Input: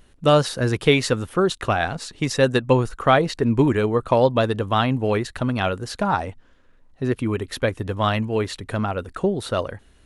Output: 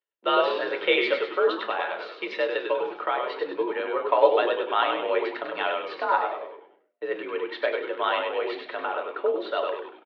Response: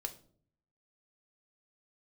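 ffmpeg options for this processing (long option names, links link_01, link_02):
-filter_complex "[0:a]agate=range=-32dB:threshold=-46dB:ratio=16:detection=peak,lowshelf=frequency=460:gain=-7,asettb=1/sr,asplit=3[link_01][link_02][link_03];[link_01]atrim=end=1.644[link_04];[link_02]atrim=start=1.64:end=3.92,asetpts=PTS-STARTPTS,afade=type=in:duration=0.004:curve=qsin,afade=type=out:start_time=2.276:duration=0.004:curve=qsin,acompressor=threshold=-22dB:ratio=6[link_05];[link_03]atrim=start=3.916[link_06];[link_04][link_05]acrossfade=duration=0.004:curve1=hsin:curve2=qsin[link_07];[link_07][link_06]acrossfade=duration=0.004:curve1=qsin:curve2=hsin,asplit=7[link_08][link_09][link_10][link_11][link_12][link_13][link_14];[link_09]adelay=98,afreqshift=-110,volume=-4.5dB[link_15];[link_10]adelay=196,afreqshift=-220,volume=-10.7dB[link_16];[link_11]adelay=294,afreqshift=-330,volume=-16.9dB[link_17];[link_12]adelay=392,afreqshift=-440,volume=-23.1dB[link_18];[link_13]adelay=490,afreqshift=-550,volume=-29.3dB[link_19];[link_14]adelay=588,afreqshift=-660,volume=-35.5dB[link_20];[link_08][link_15][link_16][link_17][link_18][link_19][link_20]amix=inputs=7:normalize=0[link_21];[1:a]atrim=start_sample=2205,afade=type=out:start_time=0.21:duration=0.01,atrim=end_sample=9702[link_22];[link_21][link_22]afir=irnorm=-1:irlink=0,highpass=frequency=300:width_type=q:width=0.5412,highpass=frequency=300:width_type=q:width=1.307,lowpass=frequency=3500:width_type=q:width=0.5176,lowpass=frequency=3500:width_type=q:width=0.7071,lowpass=frequency=3500:width_type=q:width=1.932,afreqshift=51"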